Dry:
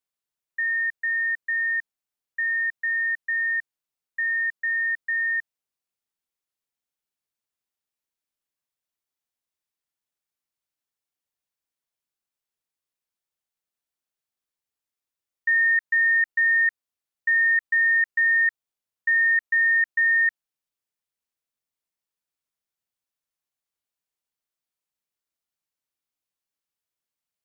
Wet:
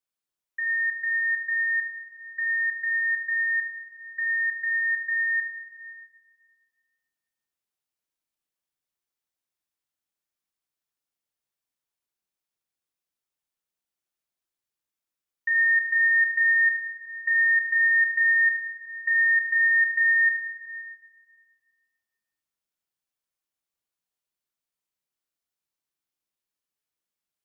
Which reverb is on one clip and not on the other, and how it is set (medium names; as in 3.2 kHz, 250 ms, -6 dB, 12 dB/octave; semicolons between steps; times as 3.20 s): plate-style reverb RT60 1.9 s, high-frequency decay 0.85×, DRR 2.5 dB; trim -2.5 dB